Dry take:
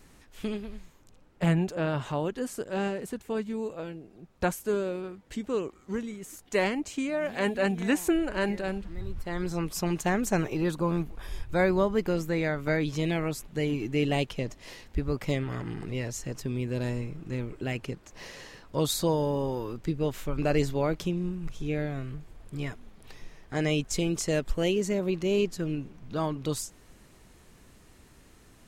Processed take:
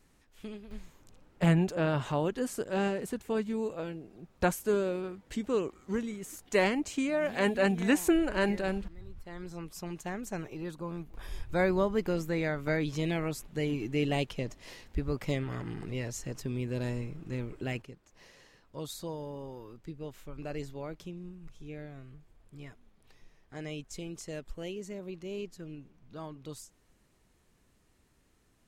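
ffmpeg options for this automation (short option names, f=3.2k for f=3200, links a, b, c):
-af "asetnsamples=n=441:p=0,asendcmd='0.71 volume volume 0dB;8.88 volume volume -11dB;11.14 volume volume -3dB;17.82 volume volume -13dB',volume=-10dB"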